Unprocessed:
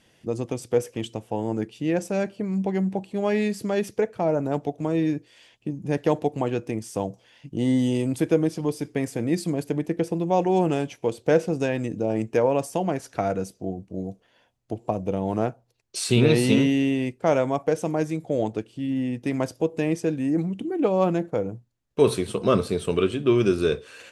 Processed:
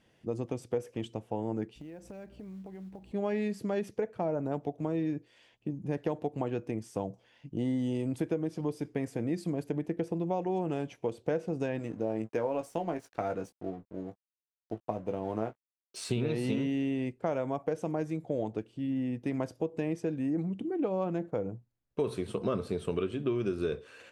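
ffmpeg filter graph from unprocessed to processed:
ffmpeg -i in.wav -filter_complex "[0:a]asettb=1/sr,asplit=3[link_01][link_02][link_03];[link_01]atrim=end=1.764[link_04];[link_02]atrim=start=1.76:end=3.12,asetpts=PTS-STARTPTS,afade=type=in:duration=0.004:curve=qsin,afade=type=out:start_time=1.356:duration=0.004:curve=qsin,aeval=exprs='val(0)+0.00355*(sin(2*PI*60*n/s)+sin(2*PI*2*60*n/s)/2+sin(2*PI*3*60*n/s)/3+sin(2*PI*4*60*n/s)/4+sin(2*PI*5*60*n/s)/5)':channel_layout=same,acompressor=threshold=-37dB:ratio=8:attack=3.2:release=140:knee=1:detection=peak,acrusher=bits=6:mode=log:mix=0:aa=0.000001[link_05];[link_03]atrim=start=3.116[link_06];[link_04][link_05]acrossfade=duration=0.004:curve1=hsin:curve2=qsin[link_07];[link_07][link_06]acrossfade=duration=0.004:curve1=qsin:curve2=hsin,asettb=1/sr,asplit=3[link_08][link_09][link_10];[link_08]atrim=end=11.794[link_11];[link_09]atrim=start=11.79:end=16.1,asetpts=PTS-STARTPTS,afade=type=in:duration=0.004:curve=qsin,afade=type=out:start_time=4.306:duration=0.004:curve=qsin,lowshelf=frequency=150:gain=-8.5,aeval=exprs='sgn(val(0))*max(abs(val(0))-0.00398,0)':channel_layout=same,asplit=2[link_12][link_13];[link_13]adelay=18,volume=-8dB[link_14];[link_12][link_14]amix=inputs=2:normalize=0,atrim=end_sample=190071[link_15];[link_10]atrim=start=16.096[link_16];[link_11][link_15]acrossfade=duration=0.004:curve1=hsin:curve2=qsin[link_17];[link_17][link_16]acrossfade=duration=0.004:curve1=qsin:curve2=hsin,highshelf=frequency=3100:gain=-9,acompressor=threshold=-22dB:ratio=6,volume=-5dB" out.wav

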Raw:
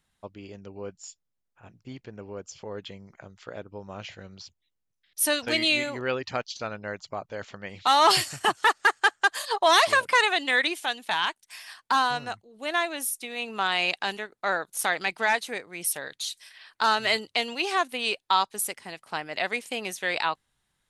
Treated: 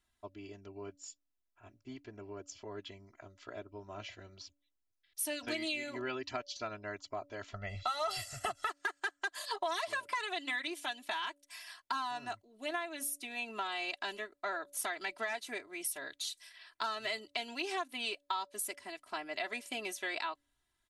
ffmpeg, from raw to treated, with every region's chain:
ffmpeg -i in.wav -filter_complex "[0:a]asettb=1/sr,asplit=3[link_01][link_02][link_03];[link_01]atrim=end=7.534[link_04];[link_02]atrim=start=7.53:end=8.7,asetpts=PTS-STARTPTS,afade=type=in:duration=0.004:curve=qsin,afade=type=out:start_time=1.166:duration=0.004:curve=qsin,lowshelf=frequency=170:gain=11.5,bandreject=frequency=270:width=7.8,aecho=1:1:1.5:0.89,atrim=end_sample=51597[link_05];[link_03]atrim=start=8.696[link_06];[link_04][link_05]acrossfade=duration=0.004:curve1=hsin:curve2=qsin[link_07];[link_07][link_06]acrossfade=duration=0.004:curve1=qsin:curve2=hsin,aecho=1:1:3:0.93,bandreject=frequency=286.8:width_type=h:width=4,bandreject=frequency=573.6:width_type=h:width=4,acompressor=threshold=-25dB:ratio=6,volume=-8.5dB" out.wav

